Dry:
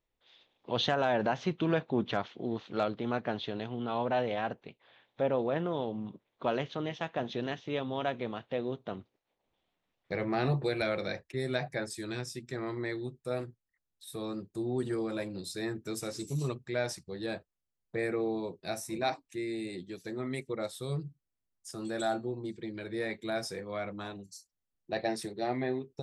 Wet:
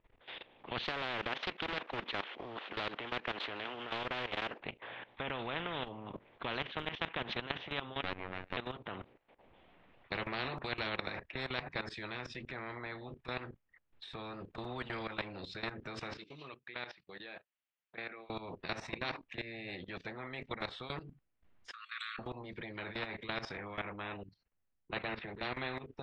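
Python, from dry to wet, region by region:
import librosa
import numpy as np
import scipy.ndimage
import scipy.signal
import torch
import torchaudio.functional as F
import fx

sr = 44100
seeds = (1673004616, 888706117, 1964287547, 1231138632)

y = fx.chain(x, sr, fx.cvsd(bps=64000),
    fx.highpass(hz=350.0, slope=24),
    fx.doppler_dist(depth_ms=0.23), at=(0.84, 4.6))
y = fx.chain(y, sr, fx.lower_of_two(delay_ms=0.47),
    fx.tilt_eq(slope=-2.0),
    fx.robotise(hz=92.8), at=(8.02, 8.57))
y = fx.chain(y, sr, fx.lowpass(hz=4000.0, slope=24),
    fx.differentiator(), at=(16.17, 18.3))
y = fx.chain(y, sr, fx.brickwall_highpass(low_hz=1100.0),
    fx.peak_eq(hz=5200.0, db=-11.5, octaves=0.24),
    fx.band_widen(depth_pct=40), at=(21.71, 22.19))
y = fx.chain(y, sr, fx.lowpass(hz=3100.0, slope=24),
    fx.band_widen(depth_pct=40), at=(23.57, 25.43))
y = scipy.signal.sosfilt(scipy.signal.butter(4, 2800.0, 'lowpass', fs=sr, output='sos'), y)
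y = fx.level_steps(y, sr, step_db=17)
y = fx.spectral_comp(y, sr, ratio=4.0)
y = y * librosa.db_to_amplitude(6.5)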